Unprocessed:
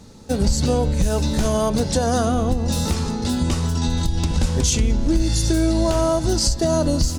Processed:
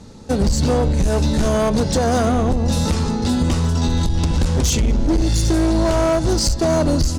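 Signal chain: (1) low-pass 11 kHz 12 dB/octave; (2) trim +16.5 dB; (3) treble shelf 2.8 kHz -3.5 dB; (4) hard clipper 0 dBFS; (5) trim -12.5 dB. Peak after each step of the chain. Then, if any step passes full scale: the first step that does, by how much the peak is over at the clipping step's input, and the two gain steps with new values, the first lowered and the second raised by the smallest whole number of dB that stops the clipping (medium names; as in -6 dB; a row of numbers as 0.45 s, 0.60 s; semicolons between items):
-7.5 dBFS, +9.0 dBFS, +9.0 dBFS, 0.0 dBFS, -12.5 dBFS; step 2, 9.0 dB; step 2 +7.5 dB, step 5 -3.5 dB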